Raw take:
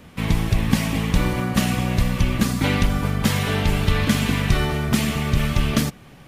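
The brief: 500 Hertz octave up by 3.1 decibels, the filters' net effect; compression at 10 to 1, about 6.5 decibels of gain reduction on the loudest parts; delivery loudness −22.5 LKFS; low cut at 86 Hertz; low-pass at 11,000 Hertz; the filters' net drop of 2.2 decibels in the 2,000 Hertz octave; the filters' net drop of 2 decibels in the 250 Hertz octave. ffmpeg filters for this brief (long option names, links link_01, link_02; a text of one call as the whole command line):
ffmpeg -i in.wav -af "highpass=86,lowpass=11000,equalizer=frequency=250:width_type=o:gain=-3.5,equalizer=frequency=500:width_type=o:gain=5,equalizer=frequency=2000:width_type=o:gain=-3,acompressor=threshold=-21dB:ratio=10,volume=4dB" out.wav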